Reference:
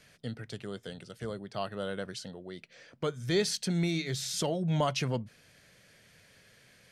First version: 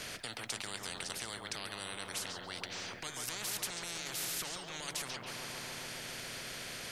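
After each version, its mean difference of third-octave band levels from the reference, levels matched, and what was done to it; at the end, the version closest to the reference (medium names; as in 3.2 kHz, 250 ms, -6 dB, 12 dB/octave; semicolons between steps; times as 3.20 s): 17.0 dB: peak limiter -28.5 dBFS, peak gain reduction 11.5 dB; on a send: filtered feedback delay 139 ms, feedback 78%, low-pass 1.2 kHz, level -7.5 dB; on the sum: spectrum-flattening compressor 10:1; trim +2 dB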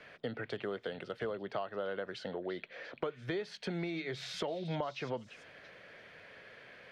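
7.5 dB: three-band isolator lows -15 dB, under 320 Hz, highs -20 dB, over 3.7 kHz; compression 16:1, threshold -44 dBFS, peak gain reduction 19.5 dB; treble shelf 3.3 kHz -10.5 dB; on a send: repeats whose band climbs or falls 341 ms, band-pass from 3 kHz, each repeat 0.7 oct, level -10 dB; on the sum: trim +11 dB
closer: second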